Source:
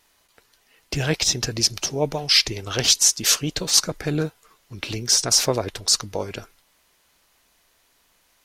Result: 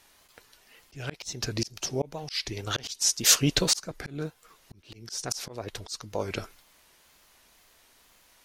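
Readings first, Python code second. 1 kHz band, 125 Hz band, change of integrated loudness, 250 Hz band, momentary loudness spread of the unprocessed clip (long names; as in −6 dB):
−7.0 dB, −6.0 dB, −8.0 dB, −4.5 dB, 15 LU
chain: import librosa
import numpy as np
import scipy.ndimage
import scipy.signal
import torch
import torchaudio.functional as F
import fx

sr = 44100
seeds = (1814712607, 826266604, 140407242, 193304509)

y = fx.wow_flutter(x, sr, seeds[0], rate_hz=2.1, depth_cents=87.0)
y = fx.auto_swell(y, sr, attack_ms=621.0)
y = y * 10.0 ** (2.5 / 20.0)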